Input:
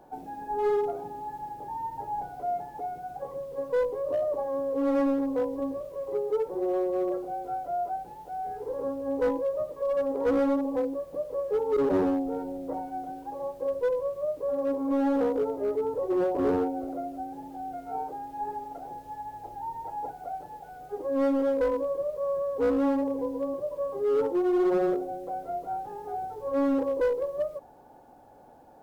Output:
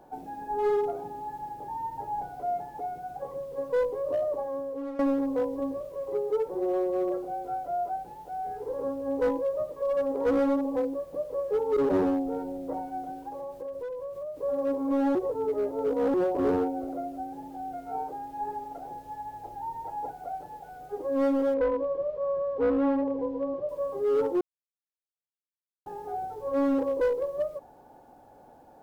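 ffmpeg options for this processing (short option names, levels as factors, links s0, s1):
-filter_complex "[0:a]asettb=1/sr,asplit=3[s0][s1][s2];[s0]atrim=end=13.284[s3];[s1]atrim=start=13.28:end=14.4,asetpts=PTS-STARTPTS,afade=t=in:d=0.004:c=qsin,afade=t=out:st=1.116:d=0.004:c=qsin,acompressor=threshold=0.02:ratio=6:attack=3.2:release=140:knee=1:detection=peak[s4];[s2]atrim=start=14.396[s5];[s3][s4]acrossfade=d=0.004:c1=hsin:c2=qsin[s6];[s6][s5]acrossfade=d=0.004:c1=qsin:c2=hsin,asettb=1/sr,asplit=3[s7][s8][s9];[s7]atrim=end=21.544[s10];[s8]atrim=start=21.54:end=23.69,asetpts=PTS-STARTPTS,afade=t=in:d=0.004:c=qsin,afade=t=out:st=2.146:d=0.004:c=qsin,lowpass=3000[s11];[s9]atrim=start=23.686[s12];[s10][s11]acrossfade=d=0.004:c1=hsin:c2=qsin[s13];[s13][s12]acrossfade=d=0.004:c1=qsin:c2=hsin,asplit=6[s14][s15][s16][s17][s18][s19];[s14]atrim=end=4.99,asetpts=PTS-STARTPTS,afade=t=out:st=4.01:d=0.98:c=qsin:silence=0.16788[s20];[s15]atrim=start=4.99:end=15.152,asetpts=PTS-STARTPTS,afade=t=in:d=0.004:c=hsin:silence=0.16788[s21];[s16]atrim=start=15.148:end=16.142,asetpts=PTS-STARTPTS,areverse[s22];[s17]atrim=start=16.138:end=24.41,asetpts=PTS-STARTPTS,afade=t=out:st=8.268:d=0.004:c=hsin[s23];[s18]atrim=start=24.41:end=25.86,asetpts=PTS-STARTPTS,volume=0[s24];[s19]atrim=start=25.86,asetpts=PTS-STARTPTS,afade=t=in:d=0.004:c=hsin[s25];[s20][s21]concat=n=2:v=0:a=1[s26];[s26][s22]acrossfade=d=0.004:c1=hsin:c2=hsin[s27];[s23][s24][s25]concat=n=3:v=0:a=1[s28];[s27][s28]acrossfade=d=0.004:c1=hsin:c2=hsin"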